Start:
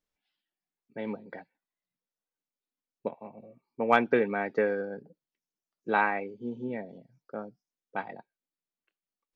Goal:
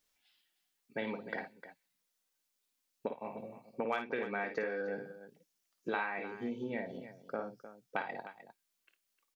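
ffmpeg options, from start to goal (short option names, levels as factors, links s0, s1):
-af "highshelf=f=2000:g=9,acompressor=threshold=0.0158:ratio=8,lowshelf=f=350:g=-4.5,aecho=1:1:54|305:0.422|0.224,volume=1.58"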